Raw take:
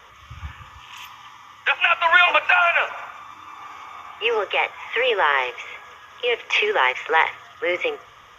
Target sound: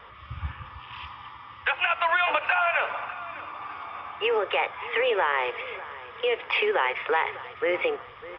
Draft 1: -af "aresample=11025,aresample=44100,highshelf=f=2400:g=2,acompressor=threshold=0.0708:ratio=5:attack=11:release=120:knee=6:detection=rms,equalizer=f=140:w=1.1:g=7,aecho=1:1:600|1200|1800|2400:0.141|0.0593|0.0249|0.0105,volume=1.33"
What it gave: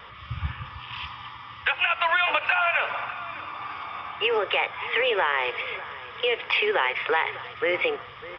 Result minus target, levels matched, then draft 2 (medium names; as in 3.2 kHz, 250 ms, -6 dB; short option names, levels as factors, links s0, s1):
4 kHz band +3.5 dB; 125 Hz band +3.0 dB
-af "aresample=11025,aresample=44100,highshelf=f=2400:g=-9,acompressor=threshold=0.0708:ratio=5:attack=11:release=120:knee=6:detection=rms,aecho=1:1:600|1200|1800|2400:0.141|0.0593|0.0249|0.0105,volume=1.33"